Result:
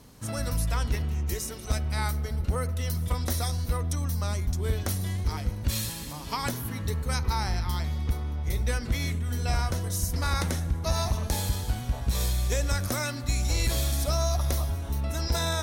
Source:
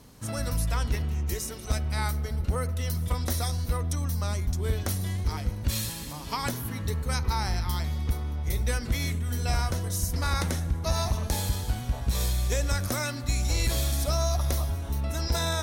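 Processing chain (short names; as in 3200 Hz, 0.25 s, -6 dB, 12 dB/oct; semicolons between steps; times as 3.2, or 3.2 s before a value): 7.44–9.72 high shelf 7100 Hz -4.5 dB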